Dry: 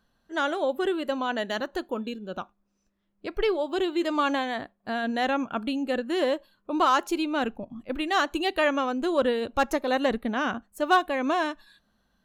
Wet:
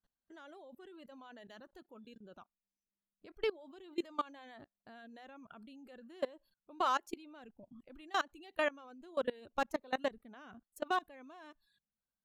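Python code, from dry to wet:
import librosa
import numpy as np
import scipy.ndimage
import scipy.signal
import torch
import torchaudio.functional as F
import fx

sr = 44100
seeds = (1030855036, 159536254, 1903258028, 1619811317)

y = fx.dereverb_blind(x, sr, rt60_s=0.54)
y = fx.level_steps(y, sr, step_db=23)
y = F.gain(torch.from_numpy(y), -7.5).numpy()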